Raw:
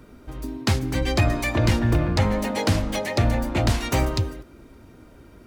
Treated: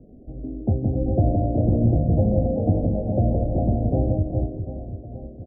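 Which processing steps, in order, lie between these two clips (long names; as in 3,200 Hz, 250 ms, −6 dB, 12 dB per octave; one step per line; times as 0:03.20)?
adaptive Wiener filter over 25 samples
Chebyshev low-pass with heavy ripple 750 Hz, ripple 3 dB
on a send: reverse bouncing-ball delay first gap 170 ms, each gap 1.4×, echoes 5
on the sum: level +2 dB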